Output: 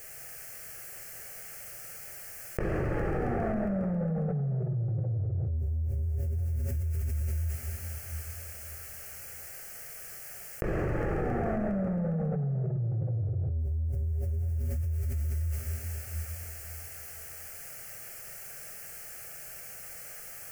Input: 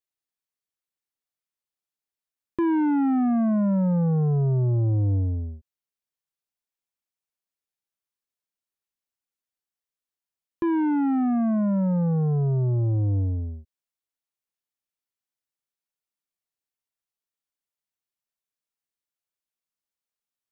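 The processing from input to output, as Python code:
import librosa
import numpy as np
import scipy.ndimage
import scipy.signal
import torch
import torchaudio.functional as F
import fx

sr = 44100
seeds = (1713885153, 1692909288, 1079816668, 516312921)

y = fx.peak_eq(x, sr, hz=120.0, db=5.5, octaves=1.5)
y = fx.hum_notches(y, sr, base_hz=50, count=3)
y = fx.gate_flip(y, sr, shuts_db=-22.0, range_db=-36)
y = fx.fixed_phaser(y, sr, hz=1000.0, stages=6)
y = fx.echo_thinned(y, sr, ms=136, feedback_pct=82, hz=420.0, wet_db=-21.5)
y = fx.rev_plate(y, sr, seeds[0], rt60_s=3.6, hf_ratio=0.65, predelay_ms=0, drr_db=0.5)
y = fx.env_flatten(y, sr, amount_pct=100)
y = F.gain(torch.from_numpy(y), 7.0).numpy()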